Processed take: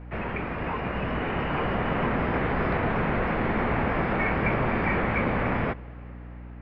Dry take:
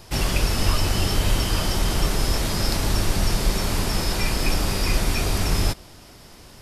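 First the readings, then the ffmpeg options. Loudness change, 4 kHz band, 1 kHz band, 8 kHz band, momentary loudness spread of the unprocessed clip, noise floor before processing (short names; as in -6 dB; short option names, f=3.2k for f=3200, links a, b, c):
-3.5 dB, -17.5 dB, +3.0 dB, under -40 dB, 2 LU, -46 dBFS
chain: -af "dynaudnorm=f=340:g=7:m=11.5dB,highpass=f=230:t=q:w=0.5412,highpass=f=230:t=q:w=1.307,lowpass=f=2.4k:t=q:w=0.5176,lowpass=f=2.4k:t=q:w=0.7071,lowpass=f=2.4k:t=q:w=1.932,afreqshift=-170,aeval=exprs='val(0)+0.0126*(sin(2*PI*60*n/s)+sin(2*PI*2*60*n/s)/2+sin(2*PI*3*60*n/s)/3+sin(2*PI*4*60*n/s)/4+sin(2*PI*5*60*n/s)/5)':c=same,volume=-1.5dB"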